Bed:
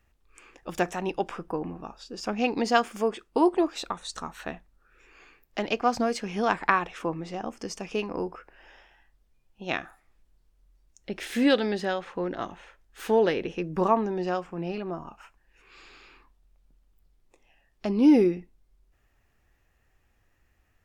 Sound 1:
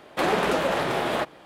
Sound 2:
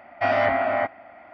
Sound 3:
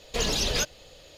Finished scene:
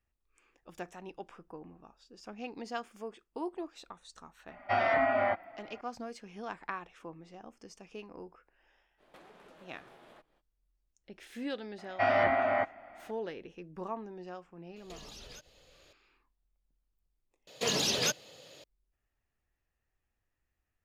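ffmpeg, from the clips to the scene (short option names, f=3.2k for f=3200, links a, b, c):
-filter_complex "[2:a]asplit=2[a][b];[3:a]asplit=2[c][d];[0:a]volume=-16dB[e];[a]asplit=2[f][g];[g]adelay=4.2,afreqshift=-1.8[h];[f][h]amix=inputs=2:normalize=1[i];[1:a]acompressor=threshold=-34dB:ratio=16:attack=6.2:release=321:knee=1:detection=rms[j];[c]acompressor=threshold=-35dB:ratio=6:attack=3.2:release=140:knee=1:detection=peak[k];[d]highpass=f=120:w=0.5412,highpass=f=120:w=1.3066[l];[e]asplit=2[m][n];[m]atrim=end=17.474[o];[l]atrim=end=1.17,asetpts=PTS-STARTPTS,volume=-2.5dB[p];[n]atrim=start=18.636[q];[i]atrim=end=1.33,asetpts=PTS-STARTPTS,volume=-2.5dB,afade=t=in:d=0.004:c=hsin,afade=t=out:st=1.326:d=0.004:c=hsin,adelay=4480[r];[j]atrim=end=1.45,asetpts=PTS-STARTPTS,volume=-17.5dB,afade=t=in:d=0.05,afade=t=out:st=1.4:d=0.05,adelay=8970[s];[b]atrim=end=1.33,asetpts=PTS-STARTPTS,volume=-5.5dB,afade=t=in:d=0.004:c=hsin,afade=t=out:st=1.326:d=0.004:c=hsin,adelay=519498S[t];[k]atrim=end=1.17,asetpts=PTS-STARTPTS,volume=-11.5dB,afade=t=in:d=0.004:c=hsin,afade=t=out:st=1.166:d=0.004:c=hsin,adelay=650916S[u];[o][p]acrossfade=d=0.004:c1=hsin:c2=hsin[v];[v][q]acrossfade=d=0.004:c1=hsin:c2=hsin[w];[w][r][s][t][u]amix=inputs=5:normalize=0"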